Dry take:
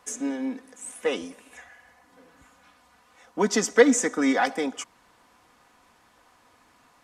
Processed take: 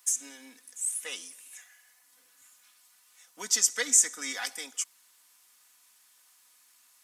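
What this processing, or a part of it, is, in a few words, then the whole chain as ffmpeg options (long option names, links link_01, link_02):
smiley-face EQ: -af "aderivative,lowshelf=frequency=120:gain=6.5,equalizer=frequency=670:width_type=o:width=1.8:gain=-4.5,highshelf=frequency=7800:gain=6,volume=4.5dB"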